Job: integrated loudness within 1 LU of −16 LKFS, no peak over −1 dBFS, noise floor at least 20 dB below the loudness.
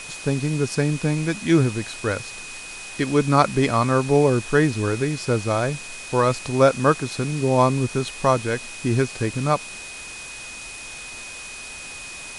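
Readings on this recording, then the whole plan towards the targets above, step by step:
interfering tone 2,500 Hz; level of the tone −37 dBFS; background noise floor −37 dBFS; target noise floor −42 dBFS; integrated loudness −21.5 LKFS; sample peak −2.5 dBFS; target loudness −16.0 LKFS
→ notch filter 2,500 Hz, Q 30
noise reduction from a noise print 6 dB
level +5.5 dB
brickwall limiter −1 dBFS

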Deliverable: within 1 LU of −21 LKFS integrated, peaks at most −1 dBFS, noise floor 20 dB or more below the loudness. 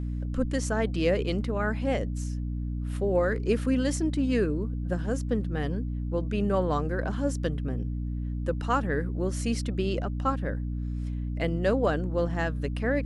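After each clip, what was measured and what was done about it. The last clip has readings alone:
mains hum 60 Hz; hum harmonics up to 300 Hz; level of the hum −29 dBFS; integrated loudness −29.0 LKFS; sample peak −12.5 dBFS; target loudness −21.0 LKFS
→ hum removal 60 Hz, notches 5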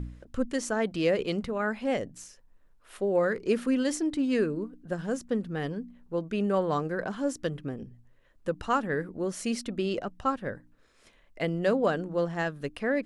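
mains hum none found; integrated loudness −30.0 LKFS; sample peak −14.0 dBFS; target loudness −21.0 LKFS
→ level +9 dB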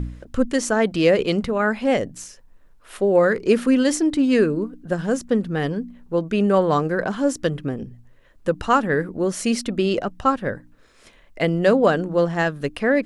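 integrated loudness −21.0 LKFS; sample peak −5.0 dBFS; background noise floor −52 dBFS

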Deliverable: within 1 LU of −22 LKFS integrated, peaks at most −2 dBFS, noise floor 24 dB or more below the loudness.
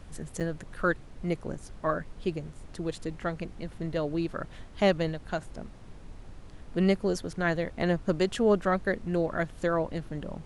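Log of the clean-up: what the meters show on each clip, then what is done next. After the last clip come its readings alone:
number of dropouts 1; longest dropout 6.9 ms; background noise floor −48 dBFS; target noise floor −55 dBFS; integrated loudness −30.5 LKFS; sample peak −11.5 dBFS; target loudness −22.0 LKFS
→ repair the gap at 0:00.40, 6.9 ms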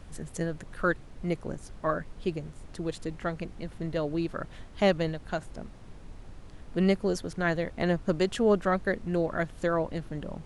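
number of dropouts 0; background noise floor −48 dBFS; target noise floor −55 dBFS
→ noise reduction from a noise print 7 dB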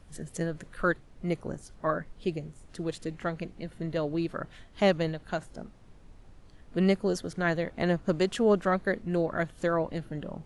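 background noise floor −54 dBFS; target noise floor −55 dBFS
→ noise reduction from a noise print 6 dB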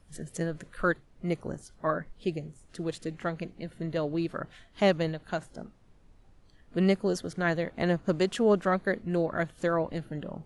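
background noise floor −59 dBFS; integrated loudness −30.5 LKFS; sample peak −12.0 dBFS; target loudness −22.0 LKFS
→ level +8.5 dB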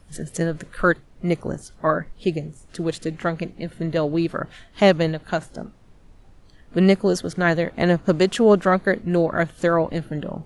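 integrated loudness −22.0 LKFS; sample peak −3.5 dBFS; background noise floor −51 dBFS

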